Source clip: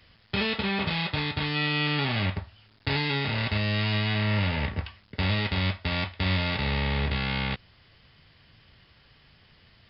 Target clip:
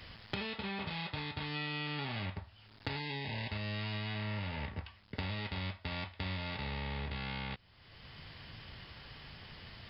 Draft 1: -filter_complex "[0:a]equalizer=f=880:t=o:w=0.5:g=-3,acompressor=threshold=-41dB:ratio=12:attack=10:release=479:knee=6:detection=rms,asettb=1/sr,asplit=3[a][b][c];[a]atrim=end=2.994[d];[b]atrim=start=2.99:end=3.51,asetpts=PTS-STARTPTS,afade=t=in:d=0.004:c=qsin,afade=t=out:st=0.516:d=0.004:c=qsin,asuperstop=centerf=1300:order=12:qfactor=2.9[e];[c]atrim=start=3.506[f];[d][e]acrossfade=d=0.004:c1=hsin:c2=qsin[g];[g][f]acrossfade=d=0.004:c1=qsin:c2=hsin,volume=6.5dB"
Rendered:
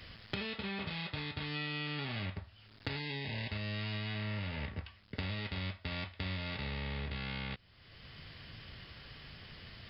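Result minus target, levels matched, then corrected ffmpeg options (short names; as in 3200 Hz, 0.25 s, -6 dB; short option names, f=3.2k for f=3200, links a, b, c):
1000 Hz band -4.0 dB
-filter_complex "[0:a]equalizer=f=880:t=o:w=0.5:g=3,acompressor=threshold=-41dB:ratio=12:attack=10:release=479:knee=6:detection=rms,asettb=1/sr,asplit=3[a][b][c];[a]atrim=end=2.994[d];[b]atrim=start=2.99:end=3.51,asetpts=PTS-STARTPTS,afade=t=in:d=0.004:c=qsin,afade=t=out:st=0.516:d=0.004:c=qsin,asuperstop=centerf=1300:order=12:qfactor=2.9[e];[c]atrim=start=3.506[f];[d][e]acrossfade=d=0.004:c1=hsin:c2=qsin[g];[g][f]acrossfade=d=0.004:c1=qsin:c2=hsin,volume=6.5dB"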